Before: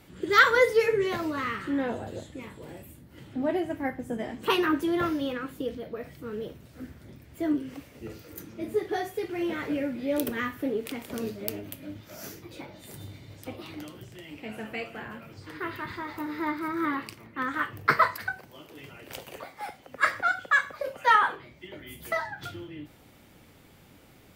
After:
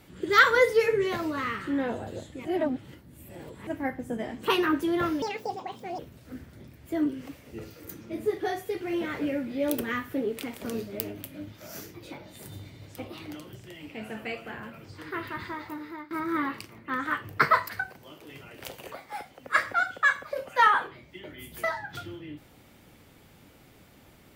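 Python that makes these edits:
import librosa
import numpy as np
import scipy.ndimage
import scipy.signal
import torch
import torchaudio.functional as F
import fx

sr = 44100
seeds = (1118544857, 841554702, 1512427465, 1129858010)

y = fx.edit(x, sr, fx.reverse_span(start_s=2.45, length_s=1.22),
    fx.speed_span(start_s=5.22, length_s=1.25, speed=1.63),
    fx.fade_out_to(start_s=16.01, length_s=0.58, floor_db=-20.5), tone=tone)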